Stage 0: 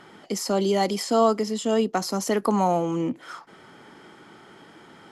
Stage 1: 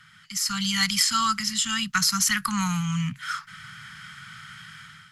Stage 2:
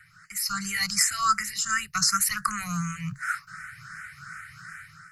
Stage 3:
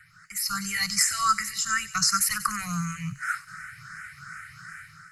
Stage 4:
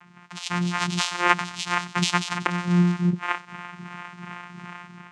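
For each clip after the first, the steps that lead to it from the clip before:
elliptic band-stop filter 150–1,400 Hz, stop band 50 dB; automatic gain control gain up to 11 dB
phaser with its sweep stopped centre 890 Hz, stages 6; frequency shifter mixed with the dry sound +2.7 Hz; level +5.5 dB
delay with a high-pass on its return 94 ms, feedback 61%, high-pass 2,700 Hz, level −12.5 dB
channel vocoder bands 4, saw 176 Hz; level +4.5 dB

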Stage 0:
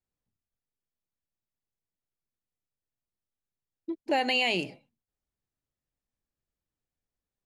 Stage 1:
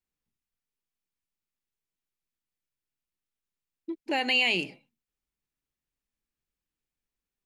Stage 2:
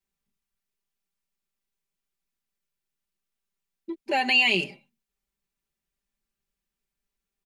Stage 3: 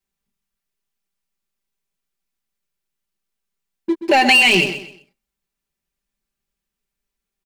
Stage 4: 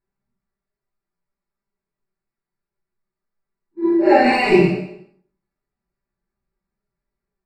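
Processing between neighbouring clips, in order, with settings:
graphic EQ with 15 bands 100 Hz −9 dB, 630 Hz −6 dB, 2,500 Hz +4 dB
comb filter 5.1 ms, depth 99%
leveller curve on the samples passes 2; downward compressor, threshold −17 dBFS, peak gain reduction 4.5 dB; on a send: repeating echo 128 ms, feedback 29%, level −11.5 dB; on the sum: level +7 dB
random phases in long frames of 200 ms; moving average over 14 samples; convolution reverb RT60 0.55 s, pre-delay 4 ms, DRR 3 dB; level +3 dB

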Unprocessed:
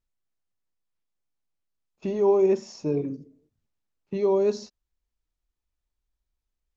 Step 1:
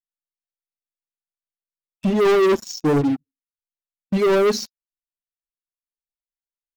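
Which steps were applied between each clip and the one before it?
spectral dynamics exaggerated over time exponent 2
leveller curve on the samples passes 5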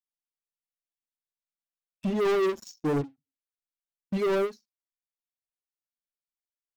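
every ending faded ahead of time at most 300 dB per second
level −8.5 dB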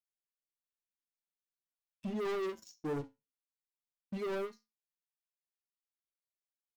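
tuned comb filter 110 Hz, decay 0.24 s, harmonics all, mix 60%
level −5 dB

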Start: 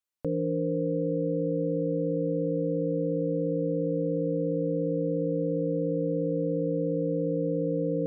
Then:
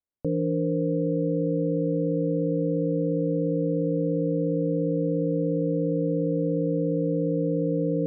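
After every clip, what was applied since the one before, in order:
Bessel low-pass filter 510 Hz, order 2
level +4.5 dB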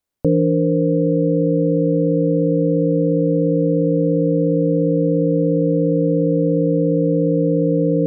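speech leveller 0.5 s
level +8.5 dB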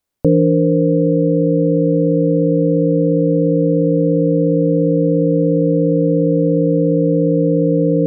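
speech leveller 2 s
level +2.5 dB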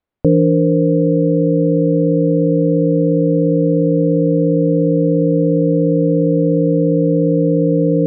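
high-frequency loss of the air 380 metres
level +1 dB

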